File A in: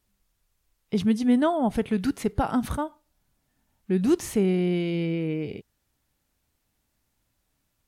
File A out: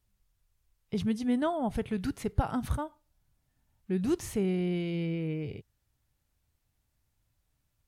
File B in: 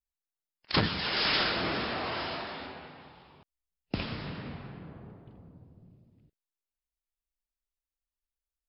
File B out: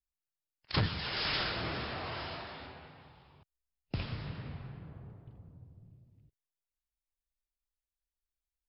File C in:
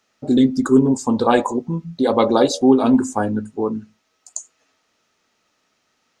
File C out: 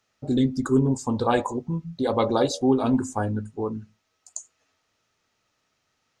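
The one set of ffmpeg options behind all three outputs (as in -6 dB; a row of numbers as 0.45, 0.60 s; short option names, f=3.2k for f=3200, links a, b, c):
-af "lowshelf=f=160:t=q:w=1.5:g=6.5,volume=-6dB"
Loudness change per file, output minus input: -6.5, -5.5, -6.5 LU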